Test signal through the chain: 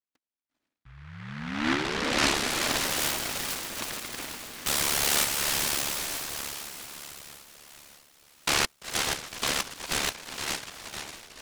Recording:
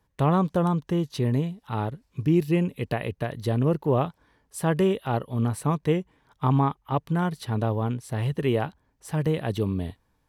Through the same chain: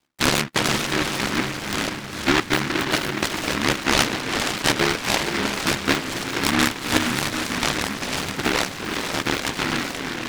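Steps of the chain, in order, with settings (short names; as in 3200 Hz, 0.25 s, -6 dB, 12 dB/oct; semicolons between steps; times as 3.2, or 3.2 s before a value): tracing distortion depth 0.26 ms; speaker cabinet 230–2600 Hz, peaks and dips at 290 Hz +10 dB, 650 Hz +10 dB, 2100 Hz +6 dB; ring modulator 36 Hz; diffused feedback echo 0.465 s, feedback 52%, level -4 dB; noise-modulated delay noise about 1500 Hz, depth 0.45 ms; gain +2 dB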